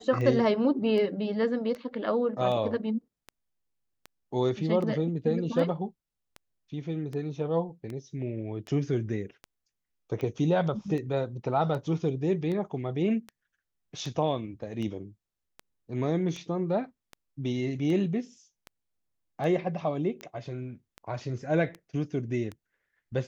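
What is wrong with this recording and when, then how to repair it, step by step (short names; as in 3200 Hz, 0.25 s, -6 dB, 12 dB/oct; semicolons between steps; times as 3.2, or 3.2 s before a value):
tick 78 rpm -25 dBFS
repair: de-click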